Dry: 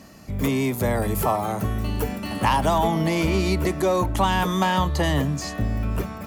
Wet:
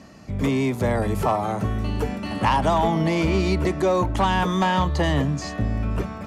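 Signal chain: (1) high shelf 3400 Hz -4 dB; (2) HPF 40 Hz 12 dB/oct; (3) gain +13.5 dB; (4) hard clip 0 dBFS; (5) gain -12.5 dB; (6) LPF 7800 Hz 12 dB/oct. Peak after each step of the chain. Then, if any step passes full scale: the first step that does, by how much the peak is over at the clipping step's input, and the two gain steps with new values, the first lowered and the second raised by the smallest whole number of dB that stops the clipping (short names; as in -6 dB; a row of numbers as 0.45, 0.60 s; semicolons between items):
-7.5, -8.0, +5.5, 0.0, -12.5, -12.5 dBFS; step 3, 5.5 dB; step 3 +7.5 dB, step 5 -6.5 dB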